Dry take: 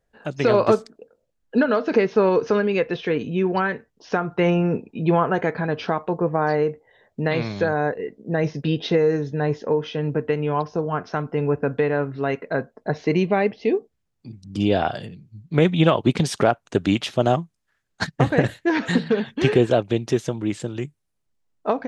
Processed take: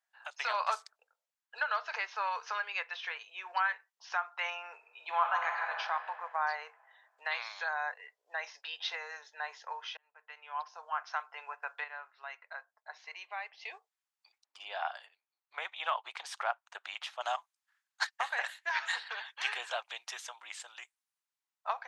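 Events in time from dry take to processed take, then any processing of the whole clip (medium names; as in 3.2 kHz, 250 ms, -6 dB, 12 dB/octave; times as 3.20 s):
4.74–5.79 s: reverb throw, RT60 2.5 s, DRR 2.5 dB
9.97–11.01 s: fade in
11.84–13.54 s: gain -7.5 dB
14.38–17.21 s: treble shelf 2.6 kHz -11.5 dB
whole clip: steep high-pass 830 Hz 36 dB/octave; trim -5.5 dB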